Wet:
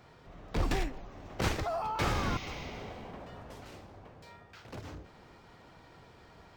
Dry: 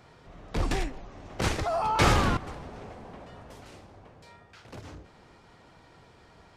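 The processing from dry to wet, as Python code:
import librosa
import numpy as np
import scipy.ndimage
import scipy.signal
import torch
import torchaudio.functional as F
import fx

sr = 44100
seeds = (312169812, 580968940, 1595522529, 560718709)

y = fx.spec_repair(x, sr, seeds[0], start_s=2.16, length_s=0.93, low_hz=1900.0, high_hz=6900.0, source='both')
y = fx.rider(y, sr, range_db=10, speed_s=0.5)
y = np.interp(np.arange(len(y)), np.arange(len(y))[::2], y[::2])
y = y * librosa.db_to_amplitude(-5.0)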